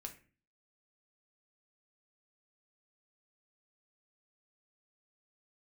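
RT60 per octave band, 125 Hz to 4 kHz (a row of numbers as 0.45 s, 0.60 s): 0.55 s, 0.55 s, 0.40 s, 0.35 s, 0.40 s, 0.30 s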